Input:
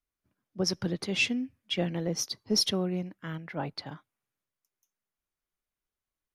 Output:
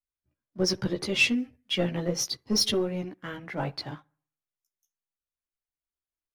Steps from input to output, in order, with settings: spectral noise reduction 9 dB; bucket-brigade echo 65 ms, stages 1024, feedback 42%, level -22 dB; waveshaping leveller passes 1; chorus voices 6, 0.67 Hz, delay 15 ms, depth 1.9 ms; trim +3 dB

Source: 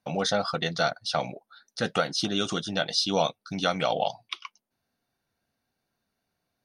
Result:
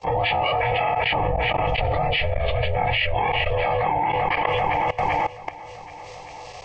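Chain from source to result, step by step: frequency axis rescaled in octaves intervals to 78%; ring modulator 300 Hz; 1.04–3.15 s: tilt EQ -2.5 dB/octave; feedback echo behind a low-pass 389 ms, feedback 45%, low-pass 3.8 kHz, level -17 dB; FDN reverb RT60 0.39 s, low-frequency decay 0.85×, high-frequency decay 0.95×, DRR 8.5 dB; level held to a coarse grid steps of 21 dB; peaking EQ 1.5 kHz +9.5 dB 2.2 oct; static phaser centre 610 Hz, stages 4; level flattener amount 100%; trim +4 dB

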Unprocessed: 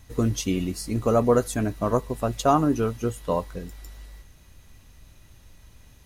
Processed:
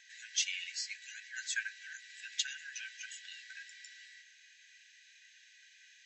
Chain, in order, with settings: tilt EQ -3.5 dB/octave; peak limiter -9.5 dBFS, peak gain reduction 6.5 dB; brick-wall FIR band-pass 1.5–8 kHz; trim +8 dB

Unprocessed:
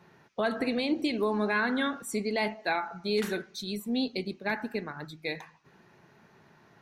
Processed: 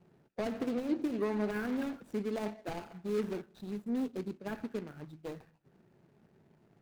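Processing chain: median filter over 41 samples; trim -3 dB

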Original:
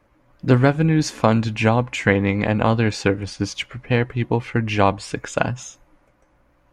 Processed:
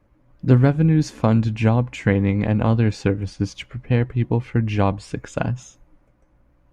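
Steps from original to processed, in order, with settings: bass shelf 360 Hz +11.5 dB; trim -7.5 dB

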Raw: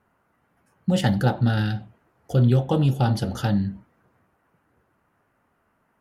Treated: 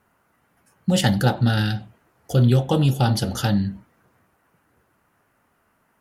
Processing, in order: treble shelf 2.9 kHz +9 dB; trim +1.5 dB

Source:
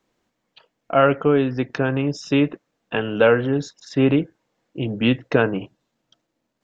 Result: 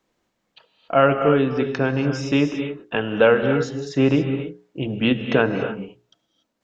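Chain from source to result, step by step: hum notches 60/120/180/240/300/360/420 Hz; gated-style reverb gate 310 ms rising, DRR 7 dB

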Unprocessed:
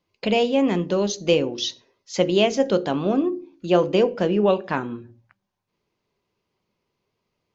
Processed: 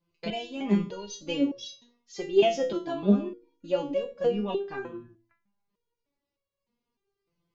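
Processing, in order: bass shelf 330 Hz +10 dB; hum notches 60/120/180/240 Hz; resonator arpeggio 3.3 Hz 170–560 Hz; trim +4 dB

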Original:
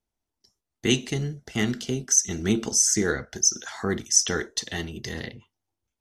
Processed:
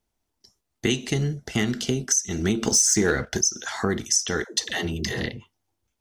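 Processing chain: compression 6:1, threshold -26 dBFS, peak gain reduction 12.5 dB; 2.62–3.42 s: waveshaping leveller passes 1; 4.44–5.26 s: phase dispersion lows, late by 132 ms, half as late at 300 Hz; trim +6.5 dB

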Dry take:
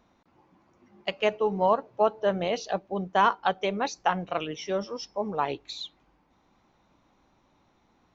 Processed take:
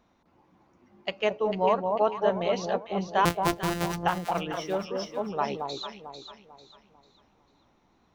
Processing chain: 3.25–3.94 s: sorted samples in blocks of 256 samples; echo whose repeats swap between lows and highs 223 ms, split 990 Hz, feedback 59%, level -3.5 dB; trim -1.5 dB

